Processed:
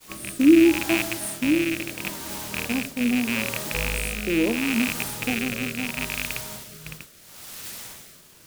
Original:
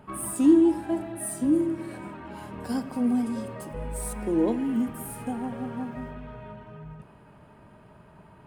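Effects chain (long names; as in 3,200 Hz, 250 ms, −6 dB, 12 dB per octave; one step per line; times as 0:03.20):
loose part that buzzes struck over −37 dBFS, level −15 dBFS
bit-depth reduction 6 bits, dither triangular
rotating-speaker cabinet horn 0.75 Hz
downward expander −32 dBFS
level +4 dB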